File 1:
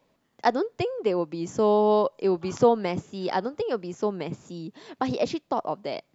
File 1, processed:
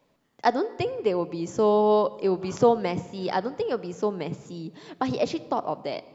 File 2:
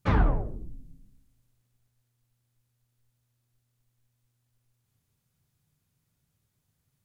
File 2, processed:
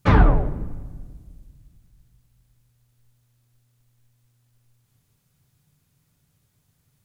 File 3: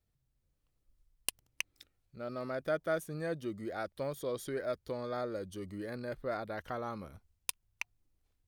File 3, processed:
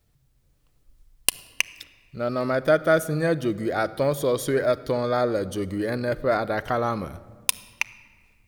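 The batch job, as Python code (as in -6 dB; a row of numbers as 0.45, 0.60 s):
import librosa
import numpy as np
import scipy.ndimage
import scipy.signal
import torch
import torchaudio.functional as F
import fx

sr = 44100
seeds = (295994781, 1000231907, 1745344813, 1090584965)

y = fx.room_shoebox(x, sr, seeds[0], volume_m3=2300.0, walls='mixed', distance_m=0.36)
y = y * 10.0 ** (-26 / 20.0) / np.sqrt(np.mean(np.square(y)))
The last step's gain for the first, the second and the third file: 0.0, +8.5, +14.0 dB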